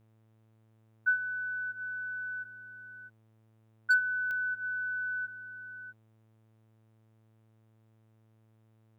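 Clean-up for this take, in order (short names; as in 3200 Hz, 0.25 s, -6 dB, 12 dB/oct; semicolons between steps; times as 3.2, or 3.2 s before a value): clip repair -19.5 dBFS; de-click; de-hum 110.5 Hz, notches 35; inverse comb 0.647 s -13 dB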